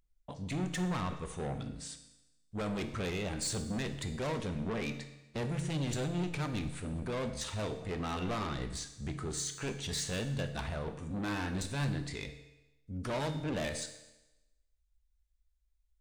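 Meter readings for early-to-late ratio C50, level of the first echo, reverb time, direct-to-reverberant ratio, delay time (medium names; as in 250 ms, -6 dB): 10.5 dB, no echo, 1.0 s, 8.5 dB, no echo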